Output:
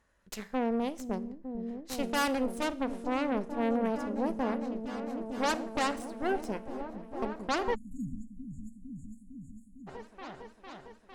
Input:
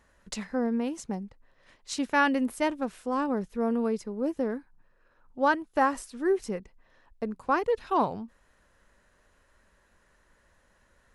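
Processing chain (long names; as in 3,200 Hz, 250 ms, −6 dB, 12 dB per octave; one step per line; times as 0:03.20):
harmonic generator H 8 −11 dB, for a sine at −12 dBFS
on a send: echo whose low-pass opens from repeat to repeat 454 ms, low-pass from 200 Hz, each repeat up 1 octave, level −3 dB
on the sum: four-comb reverb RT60 0.56 s, combs from 27 ms, DRR 17 dB
time-frequency box erased 0:07.75–0:09.87, 300–6,600 Hz
level −7.5 dB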